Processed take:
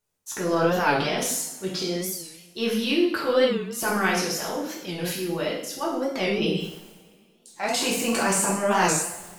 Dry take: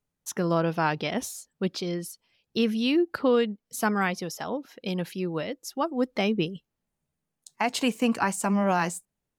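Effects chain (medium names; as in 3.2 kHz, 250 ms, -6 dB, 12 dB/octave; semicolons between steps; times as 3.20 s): tone controls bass -6 dB, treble +5 dB; reverse; upward compressor, threshold -39 dBFS; reverse; transient shaper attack -8 dB, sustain +8 dB; two-slope reverb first 0.72 s, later 2.8 s, from -24 dB, DRR -5 dB; warped record 45 rpm, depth 160 cents; trim -1.5 dB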